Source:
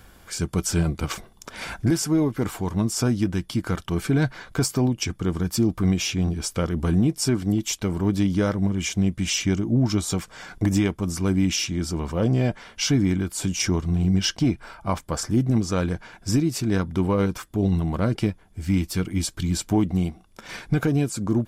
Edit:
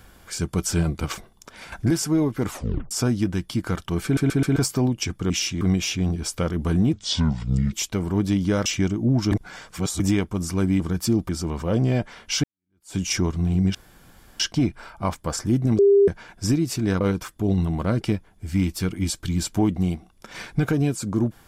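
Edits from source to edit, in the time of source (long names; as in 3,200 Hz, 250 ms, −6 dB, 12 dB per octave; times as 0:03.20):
0:01.05–0:01.72: fade out, to −9.5 dB
0:02.49: tape stop 0.42 s
0:04.04: stutter in place 0.13 s, 4 plays
0:05.30–0:05.79: swap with 0:11.47–0:11.78
0:07.11–0:07.62: play speed 64%
0:08.55–0:09.33: remove
0:09.99–0:10.67: reverse
0:12.93–0:13.46: fade in exponential
0:14.24: splice in room tone 0.65 s
0:15.63–0:15.92: beep over 400 Hz −11.5 dBFS
0:16.85–0:17.15: remove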